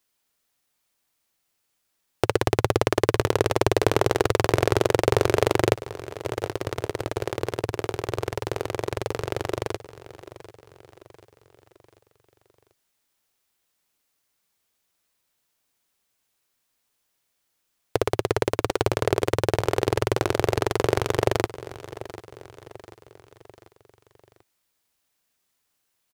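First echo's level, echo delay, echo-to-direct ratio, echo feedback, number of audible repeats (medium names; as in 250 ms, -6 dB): -16.0 dB, 741 ms, -15.0 dB, 48%, 3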